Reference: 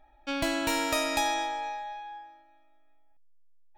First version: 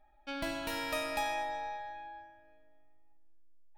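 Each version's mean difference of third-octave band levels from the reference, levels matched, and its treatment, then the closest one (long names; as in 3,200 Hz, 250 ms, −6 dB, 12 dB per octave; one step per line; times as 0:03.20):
3.0 dB: parametric band 7,100 Hz −8 dB 0.43 octaves
rectangular room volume 4,000 cubic metres, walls mixed, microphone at 1.3 metres
level −8 dB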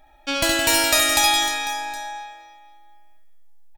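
6.0 dB: high-shelf EQ 3,200 Hz +11.5 dB
reverse bouncing-ball delay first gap 70 ms, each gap 1.4×, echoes 5
level +5 dB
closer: first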